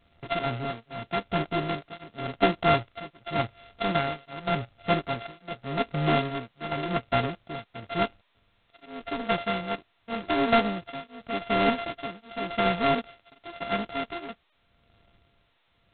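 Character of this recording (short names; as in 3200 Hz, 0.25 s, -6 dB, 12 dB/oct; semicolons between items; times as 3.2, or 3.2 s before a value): a buzz of ramps at a fixed pitch in blocks of 64 samples; tremolo triangle 0.88 Hz, depth 100%; G.726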